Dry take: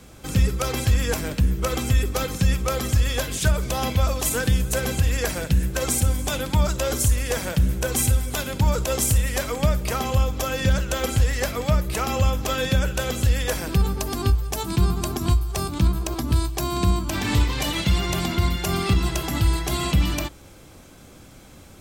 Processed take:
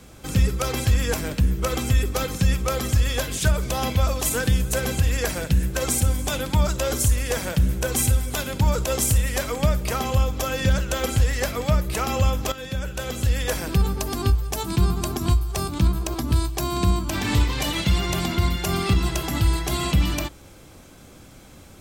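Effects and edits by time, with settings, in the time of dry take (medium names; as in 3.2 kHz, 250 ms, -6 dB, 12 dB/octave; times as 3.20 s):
12.52–13.52 s: fade in, from -13 dB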